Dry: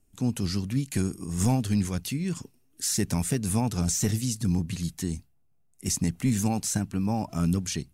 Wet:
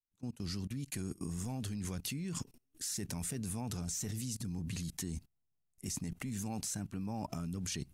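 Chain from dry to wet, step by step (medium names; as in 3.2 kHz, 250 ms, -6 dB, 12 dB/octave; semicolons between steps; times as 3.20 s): fade-in on the opening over 1.69 s; level held to a coarse grid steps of 21 dB; trim +3.5 dB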